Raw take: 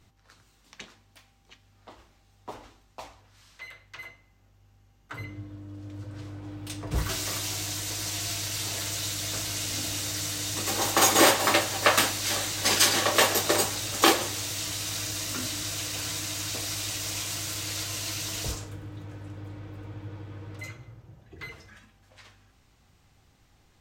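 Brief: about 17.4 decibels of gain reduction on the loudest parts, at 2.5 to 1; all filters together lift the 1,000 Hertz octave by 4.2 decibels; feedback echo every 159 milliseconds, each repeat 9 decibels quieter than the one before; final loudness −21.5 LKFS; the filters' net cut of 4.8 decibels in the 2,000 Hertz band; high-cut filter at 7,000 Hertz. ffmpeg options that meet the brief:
ffmpeg -i in.wav -af "lowpass=7000,equalizer=frequency=1000:width_type=o:gain=7.5,equalizer=frequency=2000:width_type=o:gain=-8.5,acompressor=threshold=-42dB:ratio=2.5,aecho=1:1:159|318|477|636:0.355|0.124|0.0435|0.0152,volume=18.5dB" out.wav

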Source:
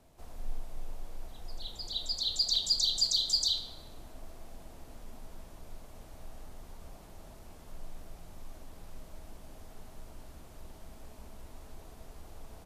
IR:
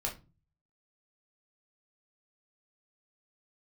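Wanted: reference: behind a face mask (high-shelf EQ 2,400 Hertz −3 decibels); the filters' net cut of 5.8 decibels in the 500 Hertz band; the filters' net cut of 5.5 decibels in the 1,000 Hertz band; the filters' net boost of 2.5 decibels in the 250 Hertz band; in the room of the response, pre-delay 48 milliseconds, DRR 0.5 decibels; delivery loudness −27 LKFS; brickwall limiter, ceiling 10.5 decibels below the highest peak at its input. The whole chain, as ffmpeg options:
-filter_complex "[0:a]equalizer=frequency=250:width_type=o:gain=5.5,equalizer=frequency=500:width_type=o:gain=-8,equalizer=frequency=1000:width_type=o:gain=-4,alimiter=level_in=2.5dB:limit=-24dB:level=0:latency=1,volume=-2.5dB,asplit=2[link_01][link_02];[1:a]atrim=start_sample=2205,adelay=48[link_03];[link_02][link_03]afir=irnorm=-1:irlink=0,volume=-3.5dB[link_04];[link_01][link_04]amix=inputs=2:normalize=0,highshelf=frequency=2400:gain=-3,volume=14dB"

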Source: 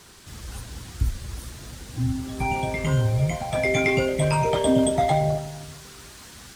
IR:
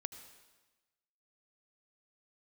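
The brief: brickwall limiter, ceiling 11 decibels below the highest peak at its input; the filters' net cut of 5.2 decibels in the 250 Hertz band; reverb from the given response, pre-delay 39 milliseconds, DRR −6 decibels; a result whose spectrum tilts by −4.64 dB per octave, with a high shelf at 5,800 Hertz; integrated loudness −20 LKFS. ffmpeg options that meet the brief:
-filter_complex "[0:a]equalizer=frequency=250:width_type=o:gain=-7,highshelf=frequency=5800:gain=6,alimiter=limit=-19dB:level=0:latency=1,asplit=2[link_01][link_02];[1:a]atrim=start_sample=2205,adelay=39[link_03];[link_02][link_03]afir=irnorm=-1:irlink=0,volume=8.5dB[link_04];[link_01][link_04]amix=inputs=2:normalize=0,volume=3.5dB"

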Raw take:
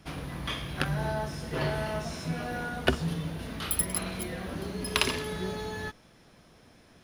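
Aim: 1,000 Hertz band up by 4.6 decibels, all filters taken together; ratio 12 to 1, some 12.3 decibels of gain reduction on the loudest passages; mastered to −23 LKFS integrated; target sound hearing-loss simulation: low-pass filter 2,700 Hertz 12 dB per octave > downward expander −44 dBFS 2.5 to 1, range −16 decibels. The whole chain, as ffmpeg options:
ffmpeg -i in.wav -af "equalizer=frequency=1000:width_type=o:gain=6,acompressor=threshold=-31dB:ratio=12,lowpass=2700,agate=range=-16dB:threshold=-44dB:ratio=2.5,volume=14dB" out.wav

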